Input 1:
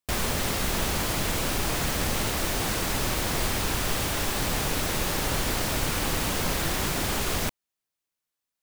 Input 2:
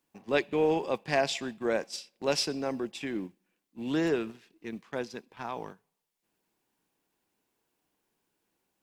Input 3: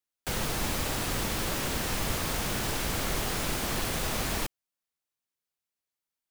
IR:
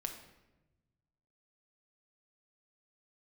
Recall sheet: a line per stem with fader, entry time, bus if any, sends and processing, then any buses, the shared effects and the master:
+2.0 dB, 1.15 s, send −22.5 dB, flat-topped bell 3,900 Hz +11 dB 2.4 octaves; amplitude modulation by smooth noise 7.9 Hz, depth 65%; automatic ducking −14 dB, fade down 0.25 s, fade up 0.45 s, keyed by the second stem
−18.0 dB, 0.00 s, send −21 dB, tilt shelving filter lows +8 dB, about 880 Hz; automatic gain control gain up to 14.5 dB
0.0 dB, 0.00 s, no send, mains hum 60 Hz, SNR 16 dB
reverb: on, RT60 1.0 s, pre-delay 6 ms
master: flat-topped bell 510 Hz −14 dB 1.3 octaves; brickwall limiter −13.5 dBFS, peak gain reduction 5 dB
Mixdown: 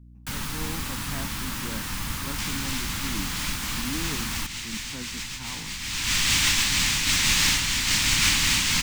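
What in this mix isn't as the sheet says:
stem 1: entry 1.15 s → 2.30 s
master: missing brickwall limiter −13.5 dBFS, peak gain reduction 5 dB

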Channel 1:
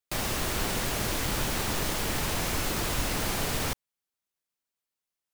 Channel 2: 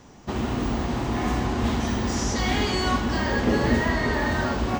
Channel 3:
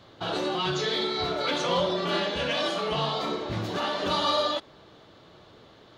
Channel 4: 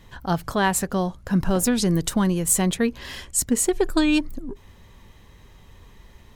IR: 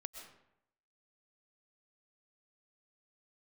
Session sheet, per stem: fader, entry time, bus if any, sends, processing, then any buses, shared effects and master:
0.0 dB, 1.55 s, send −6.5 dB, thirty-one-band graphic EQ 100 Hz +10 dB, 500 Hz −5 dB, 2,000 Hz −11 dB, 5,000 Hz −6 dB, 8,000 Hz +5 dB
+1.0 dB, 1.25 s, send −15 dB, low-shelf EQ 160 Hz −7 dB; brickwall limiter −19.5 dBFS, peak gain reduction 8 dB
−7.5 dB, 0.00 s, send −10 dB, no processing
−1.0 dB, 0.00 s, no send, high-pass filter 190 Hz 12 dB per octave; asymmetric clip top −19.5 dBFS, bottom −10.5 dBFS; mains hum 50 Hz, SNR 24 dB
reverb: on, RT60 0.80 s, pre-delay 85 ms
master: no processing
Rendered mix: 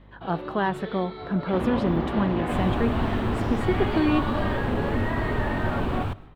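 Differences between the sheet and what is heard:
stem 1: entry 1.55 s → 2.40 s
master: extra high-frequency loss of the air 480 metres

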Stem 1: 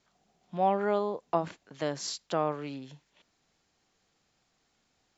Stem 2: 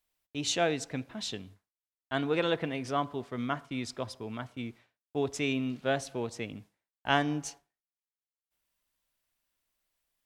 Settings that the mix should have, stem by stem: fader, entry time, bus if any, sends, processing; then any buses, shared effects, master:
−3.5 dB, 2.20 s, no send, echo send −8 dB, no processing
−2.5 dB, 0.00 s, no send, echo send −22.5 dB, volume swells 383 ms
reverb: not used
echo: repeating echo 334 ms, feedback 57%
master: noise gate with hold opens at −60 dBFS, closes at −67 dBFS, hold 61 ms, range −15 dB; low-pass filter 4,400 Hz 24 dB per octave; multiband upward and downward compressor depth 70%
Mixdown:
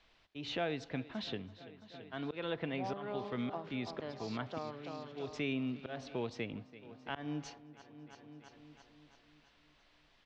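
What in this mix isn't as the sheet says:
stem 1 −3.5 dB → −15.0 dB
master: missing noise gate with hold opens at −60 dBFS, closes at −67 dBFS, hold 61 ms, range −15 dB

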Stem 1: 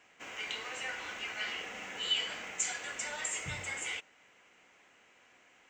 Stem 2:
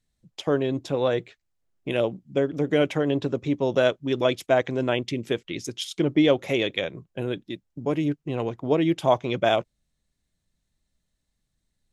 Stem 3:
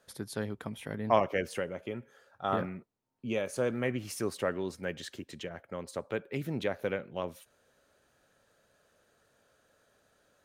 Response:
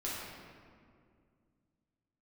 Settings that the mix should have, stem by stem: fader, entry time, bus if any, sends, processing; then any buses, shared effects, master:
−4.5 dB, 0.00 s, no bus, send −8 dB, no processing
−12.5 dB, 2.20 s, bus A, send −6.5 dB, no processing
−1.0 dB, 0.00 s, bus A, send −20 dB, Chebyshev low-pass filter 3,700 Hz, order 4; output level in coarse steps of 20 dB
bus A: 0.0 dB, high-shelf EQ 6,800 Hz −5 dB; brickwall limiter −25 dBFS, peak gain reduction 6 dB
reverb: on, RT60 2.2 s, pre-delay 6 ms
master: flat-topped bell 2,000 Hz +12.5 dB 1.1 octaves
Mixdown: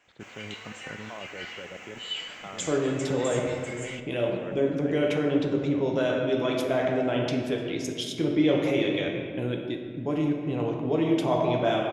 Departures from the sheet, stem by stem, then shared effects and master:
stem 2 −12.5 dB → −1.5 dB
master: missing flat-topped bell 2,000 Hz +12.5 dB 1.1 octaves

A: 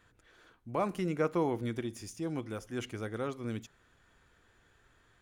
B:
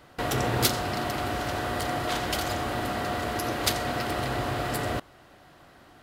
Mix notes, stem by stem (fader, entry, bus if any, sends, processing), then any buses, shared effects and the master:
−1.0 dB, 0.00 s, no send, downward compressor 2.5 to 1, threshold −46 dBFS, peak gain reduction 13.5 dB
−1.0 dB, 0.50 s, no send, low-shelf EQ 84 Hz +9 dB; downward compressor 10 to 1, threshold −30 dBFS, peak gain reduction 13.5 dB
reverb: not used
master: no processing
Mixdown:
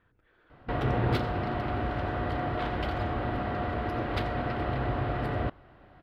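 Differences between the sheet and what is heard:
stem B: missing downward compressor 10 to 1, threshold −30 dBFS, peak gain reduction 13.5 dB
master: extra high-frequency loss of the air 430 metres

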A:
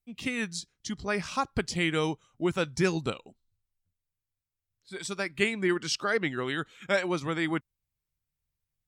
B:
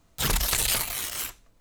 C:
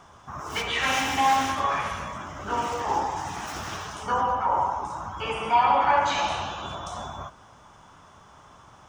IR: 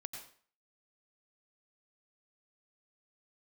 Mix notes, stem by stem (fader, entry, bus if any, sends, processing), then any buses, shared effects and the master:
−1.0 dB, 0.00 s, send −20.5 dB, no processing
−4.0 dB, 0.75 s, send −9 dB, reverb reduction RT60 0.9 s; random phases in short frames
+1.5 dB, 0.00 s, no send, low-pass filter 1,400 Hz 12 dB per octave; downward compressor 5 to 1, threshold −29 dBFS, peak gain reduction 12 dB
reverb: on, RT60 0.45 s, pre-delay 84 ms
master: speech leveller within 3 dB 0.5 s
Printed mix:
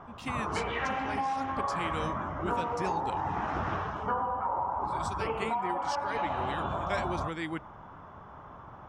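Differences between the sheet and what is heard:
stem A −1.0 dB → −10.0 dB
stem B: muted

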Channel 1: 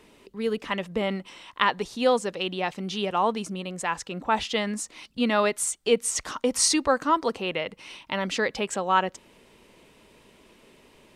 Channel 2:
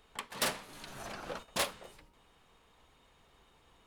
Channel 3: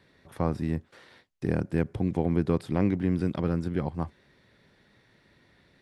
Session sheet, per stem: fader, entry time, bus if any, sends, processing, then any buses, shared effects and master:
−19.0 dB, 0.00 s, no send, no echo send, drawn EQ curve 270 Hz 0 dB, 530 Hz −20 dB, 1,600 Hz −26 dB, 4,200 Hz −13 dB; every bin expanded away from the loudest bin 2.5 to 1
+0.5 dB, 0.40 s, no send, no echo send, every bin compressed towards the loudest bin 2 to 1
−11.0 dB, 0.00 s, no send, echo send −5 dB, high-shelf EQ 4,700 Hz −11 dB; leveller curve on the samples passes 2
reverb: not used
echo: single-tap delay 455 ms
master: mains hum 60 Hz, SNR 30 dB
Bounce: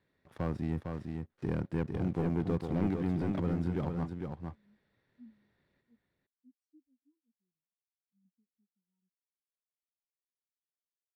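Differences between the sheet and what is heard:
stem 1 −19.0 dB → −28.0 dB
stem 2: muted
master: missing mains hum 60 Hz, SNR 30 dB

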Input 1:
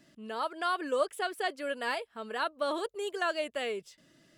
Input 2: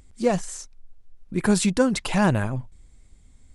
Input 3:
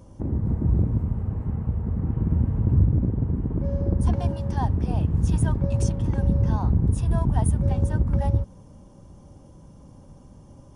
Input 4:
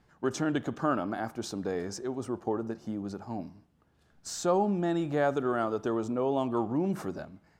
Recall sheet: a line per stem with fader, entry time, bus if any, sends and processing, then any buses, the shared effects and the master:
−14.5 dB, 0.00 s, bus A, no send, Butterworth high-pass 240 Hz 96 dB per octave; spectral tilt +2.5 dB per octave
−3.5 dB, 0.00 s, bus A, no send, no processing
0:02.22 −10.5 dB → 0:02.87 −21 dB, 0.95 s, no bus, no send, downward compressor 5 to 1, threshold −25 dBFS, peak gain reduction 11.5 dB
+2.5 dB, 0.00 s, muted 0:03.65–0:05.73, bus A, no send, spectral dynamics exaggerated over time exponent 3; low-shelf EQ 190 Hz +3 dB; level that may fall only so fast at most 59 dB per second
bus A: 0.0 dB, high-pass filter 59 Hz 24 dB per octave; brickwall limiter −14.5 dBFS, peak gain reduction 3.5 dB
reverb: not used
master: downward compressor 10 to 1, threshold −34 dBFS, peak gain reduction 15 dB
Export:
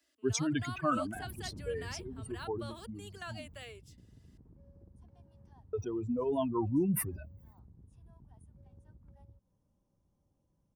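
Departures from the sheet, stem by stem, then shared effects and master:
stem 2: muted
stem 3 −10.5 dB → −18.5 dB
master: missing downward compressor 10 to 1, threshold −34 dBFS, peak gain reduction 15 dB

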